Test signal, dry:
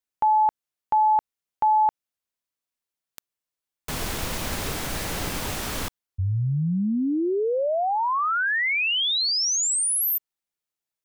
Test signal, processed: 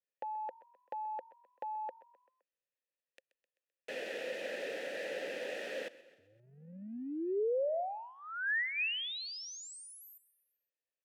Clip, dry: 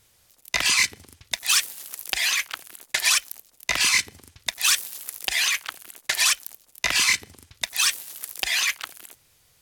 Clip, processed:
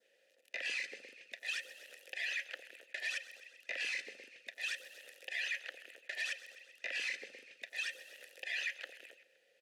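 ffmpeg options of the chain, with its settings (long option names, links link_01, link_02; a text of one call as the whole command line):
ffmpeg -i in.wav -filter_complex "[0:a]asplit=2[link_01][link_02];[link_02]asplit=4[link_03][link_04][link_05][link_06];[link_03]adelay=129,afreqshift=43,volume=-22dB[link_07];[link_04]adelay=258,afreqshift=86,volume=-26.7dB[link_08];[link_05]adelay=387,afreqshift=129,volume=-31.5dB[link_09];[link_06]adelay=516,afreqshift=172,volume=-36.2dB[link_10];[link_07][link_08][link_09][link_10]amix=inputs=4:normalize=0[link_11];[link_01][link_11]amix=inputs=2:normalize=0,adynamicequalizer=threshold=0.0126:dfrequency=2500:dqfactor=1.9:tfrequency=2500:tqfactor=1.9:attack=5:release=100:ratio=0.375:range=3.5:mode=cutabove:tftype=bell,asplit=2[link_12][link_13];[link_13]acompressor=threshold=-29dB:ratio=6:attack=0.17:release=45:knee=6:detection=peak,volume=1dB[link_14];[link_12][link_14]amix=inputs=2:normalize=0,asplit=3[link_15][link_16][link_17];[link_15]bandpass=frequency=530:width_type=q:width=8,volume=0dB[link_18];[link_16]bandpass=frequency=1840:width_type=q:width=8,volume=-6dB[link_19];[link_17]bandpass=frequency=2480:width_type=q:width=8,volume=-9dB[link_20];[link_18][link_19][link_20]amix=inputs=3:normalize=0,alimiter=level_in=4.5dB:limit=-24dB:level=0:latency=1:release=109,volume=-4.5dB,highpass=frequency=200:width=0.5412,highpass=frequency=200:width=1.3066" out.wav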